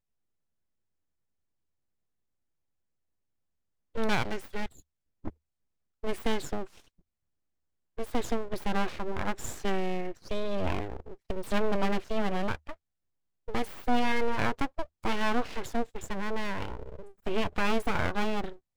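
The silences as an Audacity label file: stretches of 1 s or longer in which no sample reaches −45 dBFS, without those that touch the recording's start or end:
6.800000	7.980000	silence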